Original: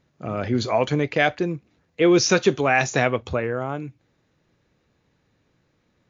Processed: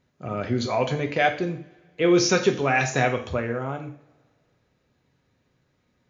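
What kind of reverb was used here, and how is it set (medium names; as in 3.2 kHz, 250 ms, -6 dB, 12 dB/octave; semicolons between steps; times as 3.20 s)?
two-slope reverb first 0.45 s, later 2 s, from -25 dB, DRR 4 dB; trim -3.5 dB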